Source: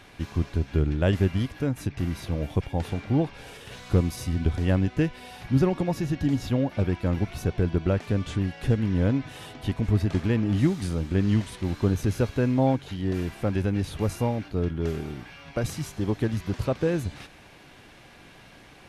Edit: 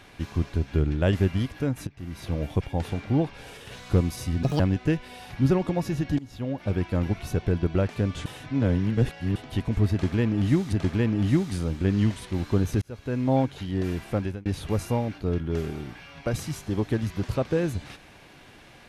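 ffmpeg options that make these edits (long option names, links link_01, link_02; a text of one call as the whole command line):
ffmpeg -i in.wav -filter_complex "[0:a]asplit=10[link_01][link_02][link_03][link_04][link_05][link_06][link_07][link_08][link_09][link_10];[link_01]atrim=end=1.87,asetpts=PTS-STARTPTS,afade=type=out:start_time=1.866:duration=0.004:curve=hsin:silence=0.199526[link_11];[link_02]atrim=start=1.87:end=4.434,asetpts=PTS-STARTPTS,afade=type=in:duration=0.41:curve=qua:silence=0.199526[link_12];[link_03]atrim=start=4.43:end=4.71,asetpts=PTS-STARTPTS,asetrate=74088,aresample=44100[link_13];[link_04]atrim=start=4.706:end=6.3,asetpts=PTS-STARTPTS,afade=type=out:start_time=1.59:duration=0.004:curve=hsin:silence=0.0891251[link_14];[link_05]atrim=start=6.3:end=8.372,asetpts=PTS-STARTPTS,afade=type=in:duration=0.63:silence=0.0891251[link_15];[link_06]atrim=start=8.368:end=9.472,asetpts=PTS-STARTPTS,areverse[link_16];[link_07]atrim=start=9.468:end=10.842[link_17];[link_08]atrim=start=10.028:end=12.12,asetpts=PTS-STARTPTS,afade=type=out:start_time=2.088:duration=0.004:curve=hsin[link_18];[link_09]atrim=start=12.12:end=13.76,asetpts=PTS-STARTPTS,afade=type=in:duration=0.54,afade=type=out:start_time=1.35:duration=0.29[link_19];[link_10]atrim=start=13.76,asetpts=PTS-STARTPTS,afade=type=in:duration=0.004:curve=hsin[link_20];[link_11][link_12]concat=n=2:v=0:a=1[link_21];[link_21][link_13]acrossfade=duration=0.004:curve1=hsin:curve2=hsin[link_22];[link_14][link_15]concat=n=2:v=0:a=1[link_23];[link_22][link_23]acrossfade=duration=0.004:curve1=hsin:curve2=hsin[link_24];[link_24][link_16]acrossfade=duration=0.004:curve1=hsin:curve2=hsin[link_25];[link_25][link_17]acrossfade=duration=0.004:curve1=hsin:curve2=hsin[link_26];[link_18][link_19][link_20]concat=n=3:v=0:a=1[link_27];[link_26][link_27]acrossfade=duration=0.004:curve1=hsin:curve2=hsin" out.wav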